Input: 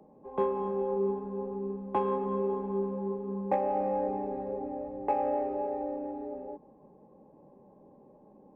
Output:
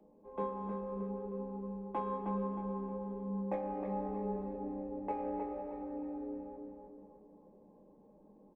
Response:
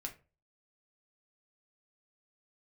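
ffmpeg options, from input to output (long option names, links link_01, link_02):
-filter_complex "[0:a]asettb=1/sr,asplit=3[link_01][link_02][link_03];[link_01]atrim=end=3.864[link_04];[link_02]atrim=start=3.86:end=4.56,asetpts=PTS-STARTPTS,afade=type=in:duration=0.004:curve=qsin,afade=type=out:start_time=0.696:duration=0.004:curve=qsin,aecho=1:1:4.7:0.6,atrim=end_sample=30870[link_05];[link_03]atrim=start=4.556[link_06];[link_04][link_05]acrossfade=duration=0.004:curve1=hsin:curve2=qsin[link_07];[link_07][link_06]acrossfade=duration=0.004:curve1=qsin:curve2=hsin,asplit=2[link_08][link_09];[link_09]adelay=313,lowpass=frequency=2500:poles=1,volume=-4dB,asplit=2[link_10][link_11];[link_11]adelay=313,lowpass=frequency=2500:poles=1,volume=0.46,asplit=2[link_12][link_13];[link_13]adelay=313,lowpass=frequency=2500:poles=1,volume=0.46,asplit=2[link_14][link_15];[link_15]adelay=313,lowpass=frequency=2500:poles=1,volume=0.46,asplit=2[link_16][link_17];[link_17]adelay=313,lowpass=frequency=2500:poles=1,volume=0.46,asplit=2[link_18][link_19];[link_19]adelay=313,lowpass=frequency=2500:poles=1,volume=0.46[link_20];[link_08][link_10][link_12][link_14][link_16][link_18][link_20]amix=inputs=7:normalize=0[link_21];[1:a]atrim=start_sample=2205,asetrate=70560,aresample=44100[link_22];[link_21][link_22]afir=irnorm=-1:irlink=0,volume=-1dB"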